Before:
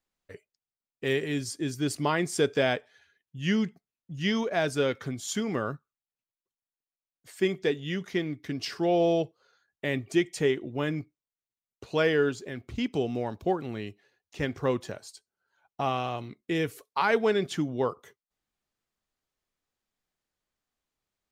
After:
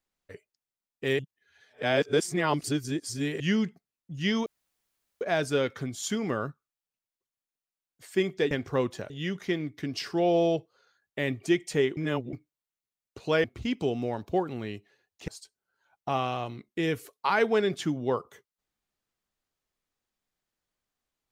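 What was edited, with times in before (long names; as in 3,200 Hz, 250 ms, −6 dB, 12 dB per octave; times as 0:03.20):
0:01.19–0:03.40: reverse
0:04.46: splice in room tone 0.75 s
0:10.63–0:10.99: reverse
0:12.10–0:12.57: remove
0:14.41–0:15.00: move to 0:07.76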